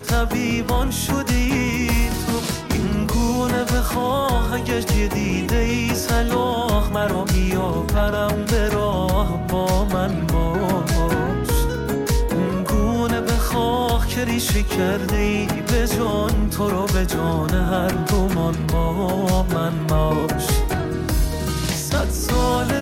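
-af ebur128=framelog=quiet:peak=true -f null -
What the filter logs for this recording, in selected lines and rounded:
Integrated loudness:
  I:         -20.7 LUFS
  Threshold: -30.7 LUFS
Loudness range:
  LRA:         0.6 LU
  Threshold: -40.7 LUFS
  LRA low:   -21.0 LUFS
  LRA high:  -20.4 LUFS
True peak:
  Peak:       -8.2 dBFS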